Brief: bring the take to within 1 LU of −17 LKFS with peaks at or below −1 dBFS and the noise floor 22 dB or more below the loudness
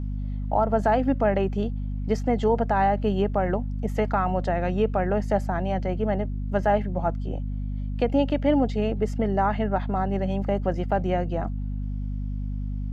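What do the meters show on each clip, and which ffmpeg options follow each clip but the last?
mains hum 50 Hz; hum harmonics up to 250 Hz; level of the hum −26 dBFS; integrated loudness −25.5 LKFS; sample peak −10.5 dBFS; target loudness −17.0 LKFS
→ -af "bandreject=frequency=50:width_type=h:width=6,bandreject=frequency=100:width_type=h:width=6,bandreject=frequency=150:width_type=h:width=6,bandreject=frequency=200:width_type=h:width=6,bandreject=frequency=250:width_type=h:width=6"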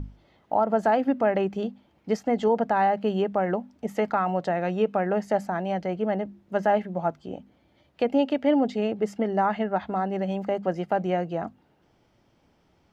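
mains hum none found; integrated loudness −26.0 LKFS; sample peak −11.5 dBFS; target loudness −17.0 LKFS
→ -af "volume=9dB"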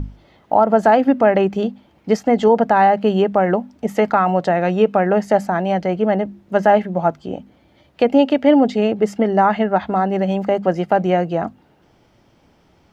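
integrated loudness −17.0 LKFS; sample peak −2.5 dBFS; background noise floor −56 dBFS

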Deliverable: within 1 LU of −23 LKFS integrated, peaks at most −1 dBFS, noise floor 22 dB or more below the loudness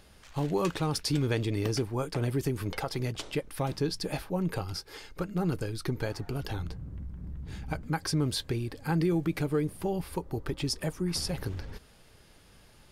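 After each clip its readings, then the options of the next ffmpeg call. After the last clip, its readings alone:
integrated loudness −32.5 LKFS; sample peak −18.0 dBFS; target loudness −23.0 LKFS
→ -af "volume=9.5dB"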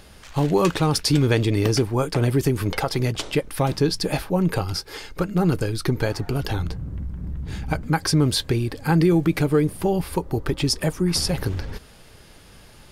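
integrated loudness −23.0 LKFS; sample peak −8.5 dBFS; background noise floor −48 dBFS

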